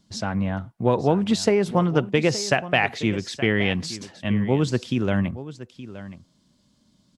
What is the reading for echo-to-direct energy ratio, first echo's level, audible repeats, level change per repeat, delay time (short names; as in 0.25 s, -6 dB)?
-15.0 dB, -15.0 dB, 1, no steady repeat, 0.871 s